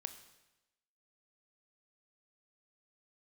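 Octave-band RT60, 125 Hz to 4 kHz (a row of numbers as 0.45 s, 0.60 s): 0.95 s, 1.0 s, 1.0 s, 1.0 s, 1.0 s, 0.95 s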